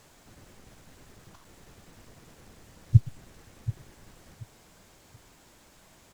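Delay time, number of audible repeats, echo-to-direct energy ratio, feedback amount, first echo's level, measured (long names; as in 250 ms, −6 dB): 731 ms, 2, −14.5 dB, 24%, −14.5 dB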